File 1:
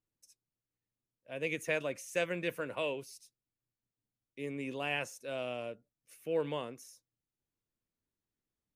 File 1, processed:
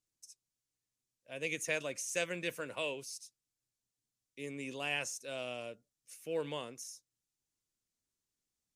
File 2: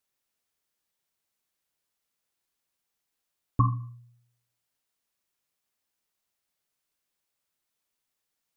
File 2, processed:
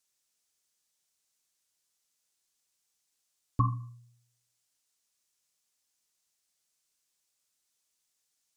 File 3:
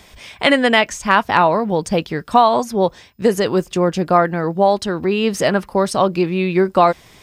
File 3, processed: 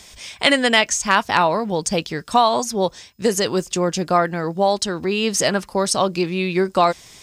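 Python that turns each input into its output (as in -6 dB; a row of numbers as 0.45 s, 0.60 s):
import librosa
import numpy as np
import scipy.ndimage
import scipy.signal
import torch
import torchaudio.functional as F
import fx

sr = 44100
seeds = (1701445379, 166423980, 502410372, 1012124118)

y = fx.peak_eq(x, sr, hz=6800.0, db=13.0, octaves=1.8)
y = y * 10.0 ** (-4.0 / 20.0)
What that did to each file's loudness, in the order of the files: -2.0 LU, -3.5 LU, -2.5 LU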